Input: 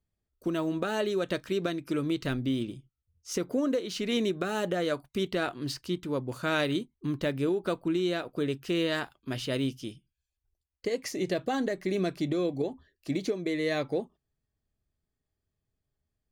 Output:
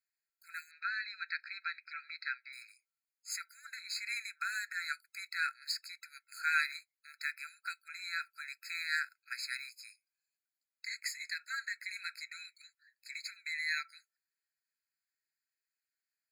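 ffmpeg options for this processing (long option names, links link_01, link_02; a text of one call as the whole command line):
ffmpeg -i in.wav -filter_complex "[0:a]asettb=1/sr,asplit=3[link_01][link_02][link_03];[link_01]atrim=end=0.714[link_04];[link_02]atrim=start=0.71:end=2.53,asetpts=PTS-STARTPTS,afade=type=in:duration=0.004:curve=qsin,afade=type=out:start_time=1.816:duration=0.004:curve=qsin,asuperpass=centerf=2400:order=8:qfactor=0.72[link_05];[link_03]atrim=start=2.526[link_06];[link_04][link_05]acrossfade=duration=0.004:curve1=hsin:curve2=qsin[link_07];[link_07][link_06]acrossfade=duration=0.004:curve1=qsin:curve2=hsin,afftfilt=real='re*eq(mod(floor(b*sr/1024/1300),2),1)':imag='im*eq(mod(floor(b*sr/1024/1300),2),1)':win_size=1024:overlap=0.75,volume=2.5dB" out.wav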